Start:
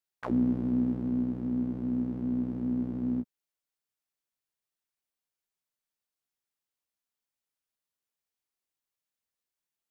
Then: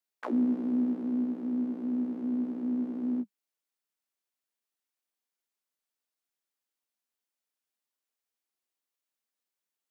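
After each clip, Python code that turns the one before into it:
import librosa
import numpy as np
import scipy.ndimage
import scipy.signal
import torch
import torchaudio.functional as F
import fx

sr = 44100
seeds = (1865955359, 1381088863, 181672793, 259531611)

y = scipy.signal.sosfilt(scipy.signal.butter(16, 200.0, 'highpass', fs=sr, output='sos'), x)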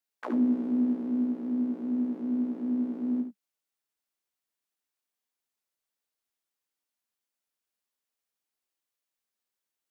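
y = x + 10.0 ** (-7.5 / 20.0) * np.pad(x, (int(72 * sr / 1000.0), 0))[:len(x)]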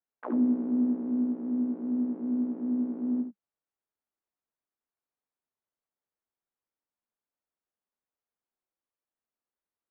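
y = scipy.signal.sosfilt(scipy.signal.butter(2, 1300.0, 'lowpass', fs=sr, output='sos'), x)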